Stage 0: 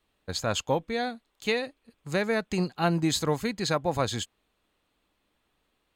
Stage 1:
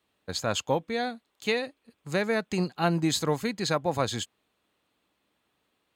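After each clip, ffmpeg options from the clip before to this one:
-af "highpass=95"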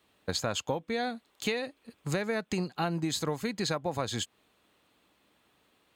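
-af "acompressor=threshold=-35dB:ratio=6,volume=6.5dB"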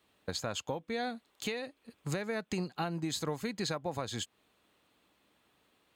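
-af "alimiter=limit=-21dB:level=0:latency=1:release=497,volume=-2.5dB"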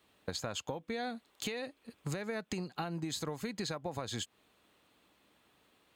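-af "acompressor=threshold=-36dB:ratio=6,volume=2dB"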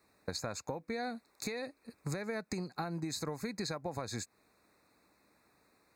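-af "asuperstop=centerf=3100:order=8:qfactor=2.5"

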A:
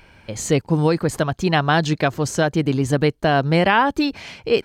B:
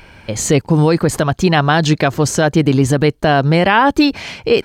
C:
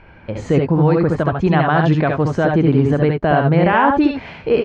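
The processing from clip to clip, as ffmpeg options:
-af "alimiter=level_in=9dB:limit=-1dB:release=50:level=0:latency=1,volume=-1dB"
-filter_complex "[0:a]lowpass=1.8k,asplit=2[a][b];[b]aecho=0:1:68|80:0.631|0.398[c];[a][c]amix=inputs=2:normalize=0,volume=-3dB"

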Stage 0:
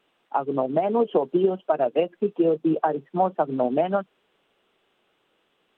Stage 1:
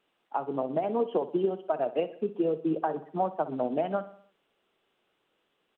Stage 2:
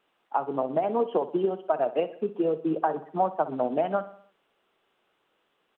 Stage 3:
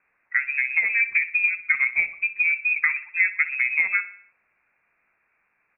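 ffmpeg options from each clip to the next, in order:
-af "aecho=1:1:62|124|186|248|310:0.178|0.0907|0.0463|0.0236|0.012,volume=-6.5dB"
-af "equalizer=f=1.1k:w=0.64:g=5"
-af "lowpass=f=2.4k:t=q:w=0.5098,lowpass=f=2.4k:t=q:w=0.6013,lowpass=f=2.4k:t=q:w=0.9,lowpass=f=2.4k:t=q:w=2.563,afreqshift=-2800,bandreject=f=45.54:t=h:w=4,bandreject=f=91.08:t=h:w=4,bandreject=f=136.62:t=h:w=4,bandreject=f=182.16:t=h:w=4,bandreject=f=227.7:t=h:w=4,bandreject=f=273.24:t=h:w=4,bandreject=f=318.78:t=h:w=4,bandreject=f=364.32:t=h:w=4,bandreject=f=409.86:t=h:w=4,bandreject=f=455.4:t=h:w=4,bandreject=f=500.94:t=h:w=4,bandreject=f=546.48:t=h:w=4,bandreject=f=592.02:t=h:w=4,bandreject=f=637.56:t=h:w=4,bandreject=f=683.1:t=h:w=4,bandreject=f=728.64:t=h:w=4,bandreject=f=774.18:t=h:w=4,volume=3.5dB"

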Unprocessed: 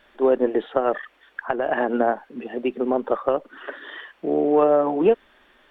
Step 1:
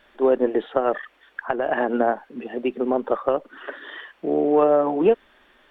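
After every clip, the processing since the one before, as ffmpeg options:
-af anull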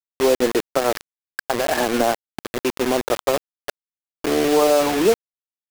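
-filter_complex "[0:a]asplit=2[a][b];[b]volume=24dB,asoftclip=hard,volume=-24dB,volume=-10.5dB[c];[a][c]amix=inputs=2:normalize=0,acrusher=bits=3:mix=0:aa=0.000001"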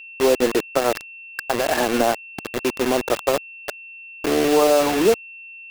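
-af "aeval=exprs='val(0)+0.0141*sin(2*PI*2700*n/s)':c=same"

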